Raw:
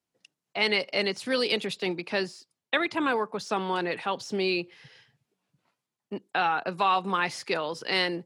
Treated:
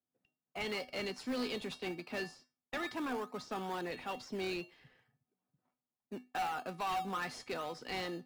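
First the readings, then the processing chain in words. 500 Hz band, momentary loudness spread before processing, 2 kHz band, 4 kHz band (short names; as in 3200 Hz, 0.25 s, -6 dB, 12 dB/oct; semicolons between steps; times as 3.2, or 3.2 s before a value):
-11.5 dB, 6 LU, -13.0 dB, -14.0 dB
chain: de-esser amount 70%; low-pass opened by the level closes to 1400 Hz, open at -25.5 dBFS; resonator 250 Hz, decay 0.26 s, harmonics odd, mix 80%; in parallel at -9 dB: decimation with a swept rate 18×, swing 60% 2.3 Hz; on the sum: soft clip -32.5 dBFS, distortion -12 dB; gain +1.5 dB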